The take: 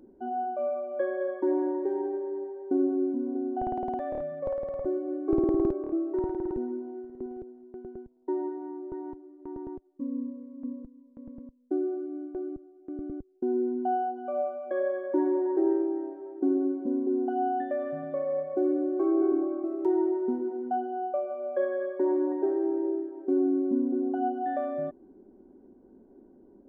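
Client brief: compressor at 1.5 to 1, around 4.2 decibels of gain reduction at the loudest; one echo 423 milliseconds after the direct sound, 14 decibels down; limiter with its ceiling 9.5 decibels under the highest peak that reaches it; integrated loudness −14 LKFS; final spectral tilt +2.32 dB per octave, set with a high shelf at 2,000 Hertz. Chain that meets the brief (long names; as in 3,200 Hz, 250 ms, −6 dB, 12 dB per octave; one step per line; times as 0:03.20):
high-shelf EQ 2,000 Hz −9 dB
downward compressor 1.5 to 1, threshold −33 dBFS
brickwall limiter −29 dBFS
single-tap delay 423 ms −14 dB
level +23 dB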